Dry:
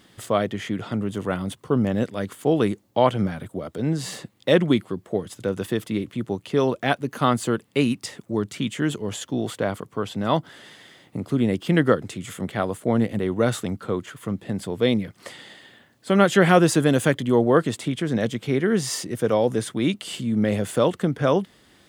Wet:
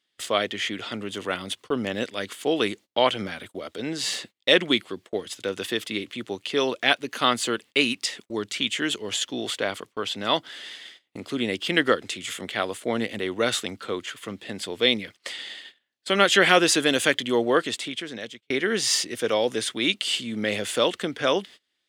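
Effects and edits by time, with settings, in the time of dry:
0:17.50–0:18.50: fade out, to −20.5 dB
whole clip: meter weighting curve D; noise gate −39 dBFS, range −26 dB; parametric band 150 Hz −10 dB 0.94 octaves; level −2 dB

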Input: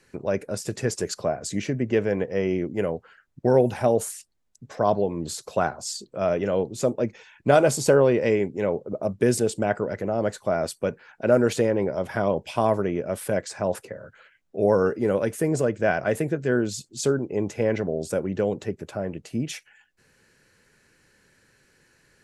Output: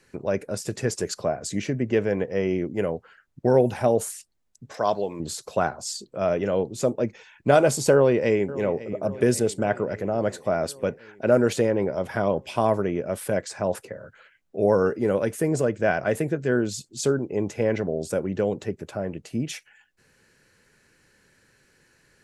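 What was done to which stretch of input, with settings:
0:04.74–0:05.20: spectral tilt +3 dB per octave
0:07.93–0:08.89: delay throw 550 ms, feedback 70%, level −16.5 dB

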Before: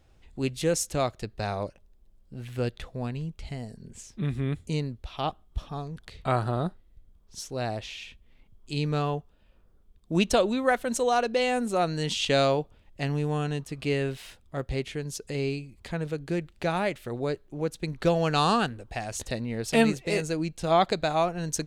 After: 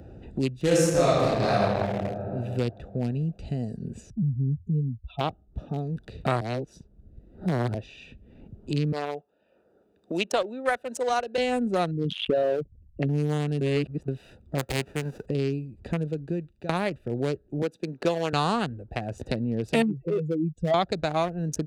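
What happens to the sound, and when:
0:00.61–0:01.62: thrown reverb, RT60 2.3 s, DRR −10 dB
0:04.10–0:05.21: expanding power law on the bin magnitudes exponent 2.7
0:06.41–0:07.74: reverse
0:08.92–0:11.38: high-pass filter 540 Hz
0:11.91–0:13.09: spectral envelope exaggerated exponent 3
0:13.61–0:14.08: reverse
0:14.58–0:15.25: spectral envelope flattened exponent 0.3
0:15.91–0:16.69: fade out, to −21 dB
0:17.62–0:18.33: high-pass filter 290 Hz
0:19.82–0:20.74: expanding power law on the bin magnitudes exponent 2.3
whole clip: adaptive Wiener filter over 41 samples; high-pass filter 51 Hz; multiband upward and downward compressor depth 70%; level +2 dB

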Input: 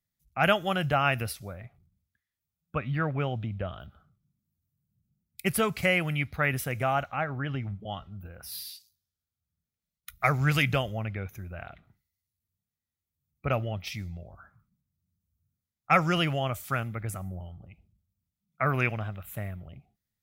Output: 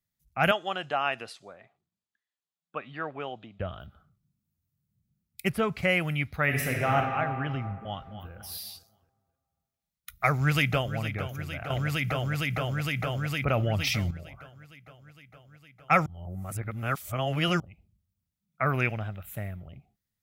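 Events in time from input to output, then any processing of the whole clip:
0:00.51–0:03.60: loudspeaker in its box 400–7,400 Hz, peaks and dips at 550 Hz −4 dB, 1,400 Hz −4 dB, 2,200 Hz −7 dB, 5,600 Hz −8 dB
0:05.48–0:05.88: low-pass filter 1,400 Hz → 3,500 Hz 6 dB per octave
0:06.44–0:06.94: thrown reverb, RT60 2.5 s, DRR −1 dB
0:07.80–0:08.31: delay throw 260 ms, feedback 35%, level −10.5 dB
0:10.26–0:10.96: delay throw 460 ms, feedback 80%, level −11.5 dB
0:11.70–0:14.11: envelope flattener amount 70%
0:16.06–0:17.60: reverse
0:18.76–0:19.54: parametric band 1,100 Hz −5.5 dB 0.29 octaves

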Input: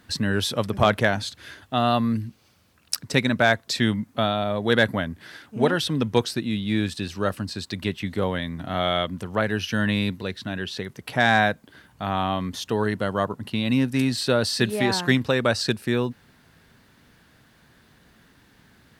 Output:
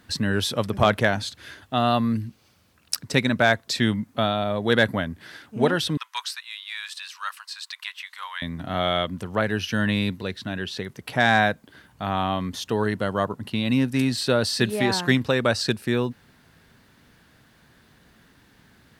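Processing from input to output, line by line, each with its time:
0:05.97–0:08.42: elliptic high-pass filter 1,000 Hz, stop band 70 dB

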